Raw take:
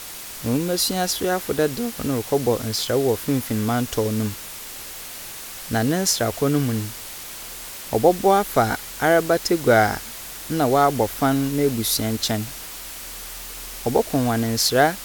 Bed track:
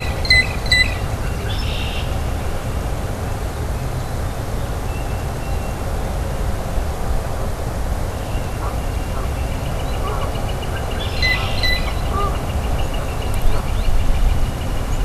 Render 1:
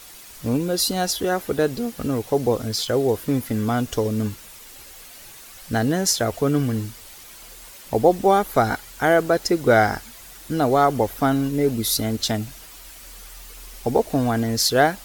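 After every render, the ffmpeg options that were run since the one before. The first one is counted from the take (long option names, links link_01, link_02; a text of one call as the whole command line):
ffmpeg -i in.wav -af "afftdn=noise_reduction=9:noise_floor=-36" out.wav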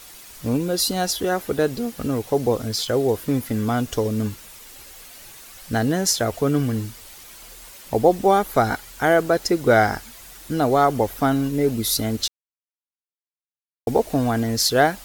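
ffmpeg -i in.wav -filter_complex "[0:a]asplit=3[link_01][link_02][link_03];[link_01]atrim=end=12.28,asetpts=PTS-STARTPTS,afade=type=out:start_time=12.276:duration=0.004:curve=hsin[link_04];[link_02]atrim=start=12.28:end=13.87,asetpts=PTS-STARTPTS,volume=0[link_05];[link_03]atrim=start=13.87,asetpts=PTS-STARTPTS,afade=type=in:duration=0.004:curve=hsin[link_06];[link_04][link_05][link_06]concat=n=3:v=0:a=1" out.wav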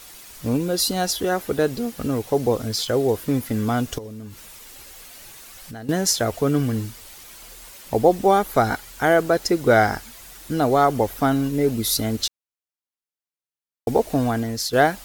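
ffmpeg -i in.wav -filter_complex "[0:a]asettb=1/sr,asplit=3[link_01][link_02][link_03];[link_01]atrim=end=3.984[link_04];[link_02]atrim=start=3.98:end=5.89,asetpts=PTS-STARTPTS,afade=type=in:duration=0.004:curve=qsin,afade=type=out:start_time=1.906:duration=0.004:curve=qsin,acompressor=threshold=-35dB:ratio=4:attack=3.2:release=140:knee=1:detection=peak[link_05];[link_03]atrim=start=5.886[link_06];[link_04][link_05]acrossfade=duration=0.004:curve1=hsin:curve2=qsin[link_07];[link_07][link_06]acrossfade=duration=0.004:curve1=qsin:curve2=hsin,asplit=2[link_08][link_09];[link_08]atrim=end=14.73,asetpts=PTS-STARTPTS,afade=type=out:start_time=14.23:duration=0.5:silence=0.354813[link_10];[link_09]atrim=start=14.73,asetpts=PTS-STARTPTS,afade=type=in:duration=0.004:curve=hsin:silence=0.354813[link_11];[link_10][link_11]concat=n=2:v=0:a=1" out.wav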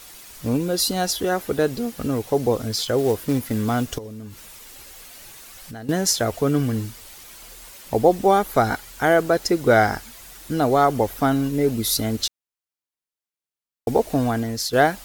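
ffmpeg -i in.wav -filter_complex "[0:a]asettb=1/sr,asplit=3[link_01][link_02][link_03];[link_01]atrim=end=2.984[link_04];[link_02]atrim=start=2.98:end=3.95,asetpts=PTS-STARTPTS,afade=type=in:duration=0.004:curve=qsin,afade=type=out:start_time=0.966:duration=0.004:curve=qsin,acrusher=bits=5:mode=log:mix=0:aa=0.000001[link_05];[link_03]atrim=start=3.946[link_06];[link_04][link_05]acrossfade=duration=0.004:curve1=hsin:curve2=qsin[link_07];[link_07][link_06]acrossfade=duration=0.004:curve1=qsin:curve2=hsin" out.wav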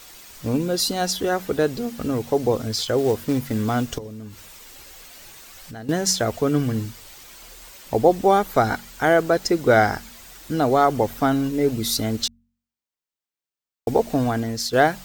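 ffmpeg -i in.wav -af "equalizer=frequency=11000:width=4.8:gain=-14.5,bandreject=frequency=46.68:width_type=h:width=4,bandreject=frequency=93.36:width_type=h:width=4,bandreject=frequency=140.04:width_type=h:width=4,bandreject=frequency=186.72:width_type=h:width=4,bandreject=frequency=233.4:width_type=h:width=4" out.wav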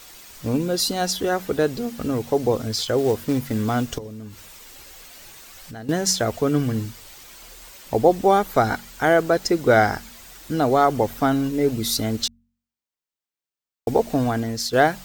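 ffmpeg -i in.wav -af anull out.wav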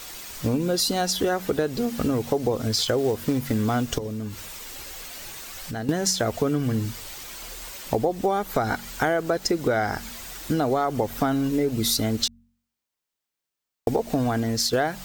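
ffmpeg -i in.wav -filter_complex "[0:a]asplit=2[link_01][link_02];[link_02]alimiter=limit=-11.5dB:level=0:latency=1:release=101,volume=-1.5dB[link_03];[link_01][link_03]amix=inputs=2:normalize=0,acompressor=threshold=-20dB:ratio=6" out.wav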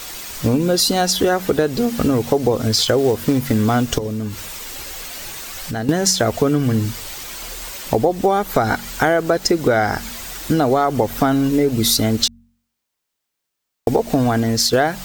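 ffmpeg -i in.wav -af "volume=7dB,alimiter=limit=-3dB:level=0:latency=1" out.wav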